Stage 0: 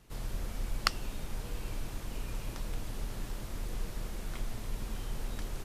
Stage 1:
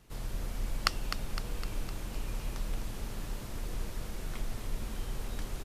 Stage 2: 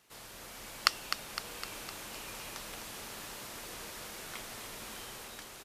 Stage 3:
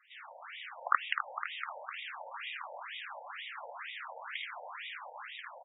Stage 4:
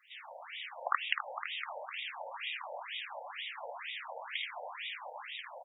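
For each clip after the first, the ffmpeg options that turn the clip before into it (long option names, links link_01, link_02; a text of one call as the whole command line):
ffmpeg -i in.wav -af "aecho=1:1:255|510|765|1020|1275|1530|1785:0.376|0.207|0.114|0.0625|0.0344|0.0189|0.0104" out.wav
ffmpeg -i in.wav -af "highpass=frequency=960:poles=1,dynaudnorm=framelen=100:gausssize=11:maxgain=4dB,volume=1dB" out.wav
ffmpeg -i in.wav -af "highpass=520,aecho=1:1:53|77:0.596|0.596,afftfilt=real='re*between(b*sr/1024,660*pow(2700/660,0.5+0.5*sin(2*PI*2.1*pts/sr))/1.41,660*pow(2700/660,0.5+0.5*sin(2*PI*2.1*pts/sr))*1.41)':imag='im*between(b*sr/1024,660*pow(2700/660,0.5+0.5*sin(2*PI*2.1*pts/sr))/1.41,660*pow(2700/660,0.5+0.5*sin(2*PI*2.1*pts/sr))*1.41)':win_size=1024:overlap=0.75,volume=7dB" out.wav
ffmpeg -i in.wav -af "equalizer=frequency=1400:width=1.5:gain=-11,volume=5.5dB" out.wav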